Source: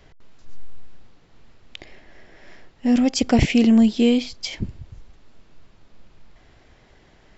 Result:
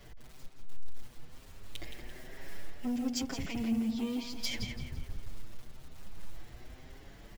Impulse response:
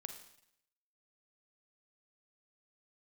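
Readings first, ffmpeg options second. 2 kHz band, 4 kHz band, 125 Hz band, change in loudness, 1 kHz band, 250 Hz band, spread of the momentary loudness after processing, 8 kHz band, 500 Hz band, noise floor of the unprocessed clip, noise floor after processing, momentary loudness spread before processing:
-12.5 dB, -10.5 dB, -14.5 dB, -18.0 dB, -15.5 dB, -16.5 dB, 22 LU, n/a, -20.0 dB, -55 dBFS, -53 dBFS, 15 LU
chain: -filter_complex "[0:a]lowshelf=f=200:g=6,acrusher=bits=5:mode=log:mix=0:aa=0.000001,acompressor=threshold=-26dB:ratio=16,asoftclip=type=tanh:threshold=-28dB,highshelf=f=4.9k:g=5,asplit=2[a][b];[b]adelay=170,lowpass=f=3.7k:p=1,volume=-4dB,asplit=2[c][d];[d]adelay=170,lowpass=f=3.7k:p=1,volume=0.52,asplit=2[e][f];[f]adelay=170,lowpass=f=3.7k:p=1,volume=0.52,asplit=2[g][h];[h]adelay=170,lowpass=f=3.7k:p=1,volume=0.52,asplit=2[i][j];[j]adelay=170,lowpass=f=3.7k:p=1,volume=0.52,asplit=2[k][l];[l]adelay=170,lowpass=f=3.7k:p=1,volume=0.52,asplit=2[m][n];[n]adelay=170,lowpass=f=3.7k:p=1,volume=0.52[o];[c][e][g][i][k][m][o]amix=inputs=7:normalize=0[p];[a][p]amix=inputs=2:normalize=0,asplit=2[q][r];[r]adelay=6.6,afreqshift=1.1[s];[q][s]amix=inputs=2:normalize=1"

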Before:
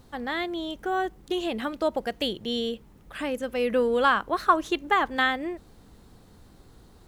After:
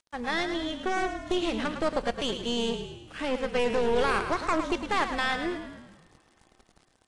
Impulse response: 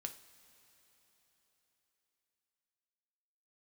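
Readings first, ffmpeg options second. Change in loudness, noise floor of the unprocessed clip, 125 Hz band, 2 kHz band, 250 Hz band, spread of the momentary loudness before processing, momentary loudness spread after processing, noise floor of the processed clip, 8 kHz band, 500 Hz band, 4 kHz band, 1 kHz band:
-2.0 dB, -54 dBFS, +5.5 dB, -2.5 dB, -1.0 dB, 10 LU, 7 LU, -66 dBFS, +5.0 dB, -1.5 dB, -0.5 dB, -4.0 dB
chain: -filter_complex "[0:a]acrossover=split=5800[a][b];[b]acompressor=threshold=-58dB:ratio=4:attack=1:release=60[c];[a][c]amix=inputs=2:normalize=0,alimiter=limit=-19dB:level=0:latency=1:release=21,aeval=exprs='val(0)*gte(abs(val(0)),0.00562)':c=same,aeval=exprs='0.112*(cos(1*acos(clip(val(0)/0.112,-1,1)))-cos(1*PI/2))+0.0398*(cos(2*acos(clip(val(0)/0.112,-1,1)))-cos(2*PI/2))+0.00708*(cos(5*acos(clip(val(0)/0.112,-1,1)))-cos(5*PI/2))+0.0112*(cos(7*acos(clip(val(0)/0.112,-1,1)))-cos(7*PI/2))':c=same,asplit=7[d][e][f][g][h][i][j];[e]adelay=107,afreqshift=-37,volume=-8.5dB[k];[f]adelay=214,afreqshift=-74,volume=-14dB[l];[g]adelay=321,afreqshift=-111,volume=-19.5dB[m];[h]adelay=428,afreqshift=-148,volume=-25dB[n];[i]adelay=535,afreqshift=-185,volume=-30.6dB[o];[j]adelay=642,afreqshift=-222,volume=-36.1dB[p];[d][k][l][m][n][o][p]amix=inputs=7:normalize=0,asplit=2[q][r];[1:a]atrim=start_sample=2205[s];[r][s]afir=irnorm=-1:irlink=0,volume=-7dB[t];[q][t]amix=inputs=2:normalize=0,volume=-2dB" -ar 22050 -c:a aac -b:a 48k

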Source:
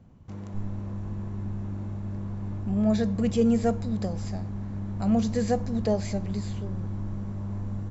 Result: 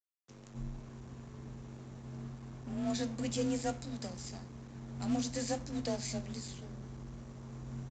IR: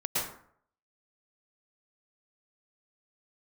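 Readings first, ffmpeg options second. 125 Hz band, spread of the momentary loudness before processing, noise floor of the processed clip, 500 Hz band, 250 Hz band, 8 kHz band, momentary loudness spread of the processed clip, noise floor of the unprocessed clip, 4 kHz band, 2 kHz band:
-13.0 dB, 11 LU, -53 dBFS, -11.5 dB, -11.5 dB, n/a, 14 LU, -38 dBFS, 0.0 dB, -4.5 dB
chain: -af "flanger=delay=8.5:depth=4:regen=82:speed=0.36:shape=sinusoidal,aresample=16000,aeval=exprs='sgn(val(0))*max(abs(val(0))-0.00562,0)':c=same,aresample=44100,crystalizer=i=6:c=0,afreqshift=30,volume=-6.5dB"

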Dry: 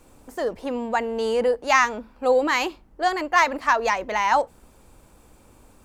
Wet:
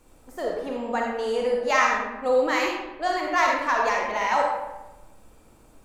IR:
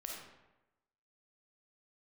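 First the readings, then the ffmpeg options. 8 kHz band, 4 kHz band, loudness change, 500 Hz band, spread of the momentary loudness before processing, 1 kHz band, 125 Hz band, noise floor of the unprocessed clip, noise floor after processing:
-3.0 dB, -2.0 dB, -1.5 dB, -1.0 dB, 10 LU, -2.0 dB, n/a, -55 dBFS, -54 dBFS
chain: -filter_complex "[1:a]atrim=start_sample=2205[a];[0:a][a]afir=irnorm=-1:irlink=0"

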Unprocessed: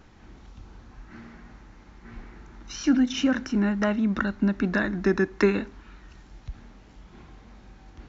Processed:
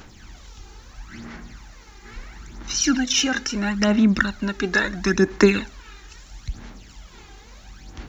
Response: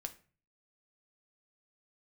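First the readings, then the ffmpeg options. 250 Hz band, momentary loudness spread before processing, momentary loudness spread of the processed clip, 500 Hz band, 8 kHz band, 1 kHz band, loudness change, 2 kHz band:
+2.5 dB, 18 LU, 21 LU, +4.0 dB, n/a, +4.5 dB, +4.0 dB, +7.0 dB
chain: -af "crystalizer=i=6:c=0,aphaser=in_gain=1:out_gain=1:delay=2.5:decay=0.59:speed=0.75:type=sinusoidal"

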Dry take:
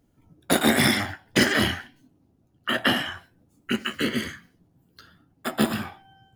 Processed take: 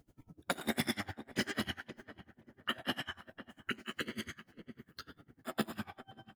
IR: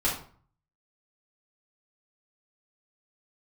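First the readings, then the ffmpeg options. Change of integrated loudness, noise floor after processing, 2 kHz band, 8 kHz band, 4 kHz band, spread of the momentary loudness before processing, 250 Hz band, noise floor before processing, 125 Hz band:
-15.5 dB, -79 dBFS, -15.0 dB, -16.5 dB, -14.0 dB, 15 LU, -15.0 dB, -65 dBFS, -15.0 dB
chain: -filter_complex "[0:a]acompressor=threshold=-44dB:ratio=2,asplit=2[a][b];[b]adelay=530,lowpass=f=1.3k:p=1,volume=-14dB,asplit=2[c][d];[d]adelay=530,lowpass=f=1.3k:p=1,volume=0.46,asplit=2[e][f];[f]adelay=530,lowpass=f=1.3k:p=1,volume=0.46,asplit=2[g][h];[h]adelay=530,lowpass=f=1.3k:p=1,volume=0.46[i];[c][e][g][i]amix=inputs=4:normalize=0[j];[a][j]amix=inputs=2:normalize=0,aeval=exprs='val(0)*pow(10,-26*(0.5-0.5*cos(2*PI*10*n/s))/20)':c=same,volume=4.5dB"

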